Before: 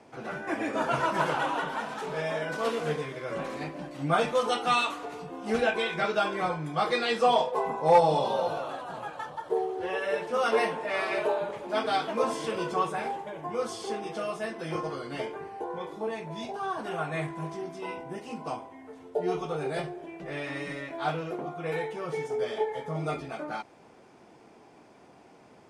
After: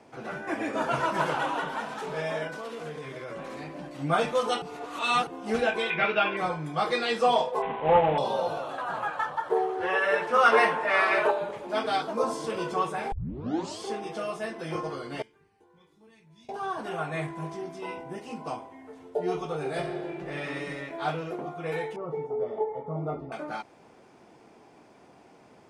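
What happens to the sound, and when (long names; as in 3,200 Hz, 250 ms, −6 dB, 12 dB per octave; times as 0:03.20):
0:02.47–0:03.95: downward compressor, threshold −34 dBFS
0:04.62–0:05.27: reverse
0:05.90–0:06.37: low-pass with resonance 2,600 Hz, resonance Q 3.6
0:07.62–0:08.18: variable-slope delta modulation 16 kbit/s
0:08.78–0:11.31: parametric band 1,400 Hz +10.5 dB 1.7 octaves
0:12.02–0:12.50: flat-topped bell 2,400 Hz −8 dB 1.2 octaves
0:13.12: tape start 0.68 s
0:15.22–0:16.49: guitar amp tone stack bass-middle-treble 6-0-2
0:19.58–0:20.47: thrown reverb, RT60 2.4 s, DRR 3.5 dB
0:21.96–0:23.32: Savitzky-Golay smoothing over 65 samples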